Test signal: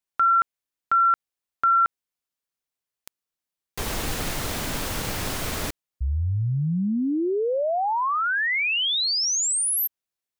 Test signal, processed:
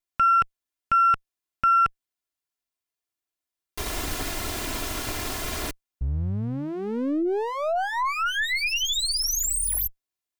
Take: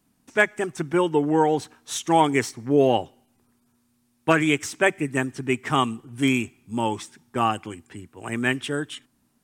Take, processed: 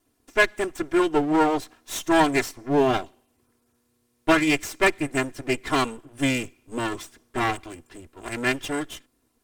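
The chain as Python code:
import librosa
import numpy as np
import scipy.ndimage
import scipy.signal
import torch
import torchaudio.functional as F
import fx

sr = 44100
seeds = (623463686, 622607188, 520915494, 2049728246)

y = fx.lower_of_two(x, sr, delay_ms=2.9)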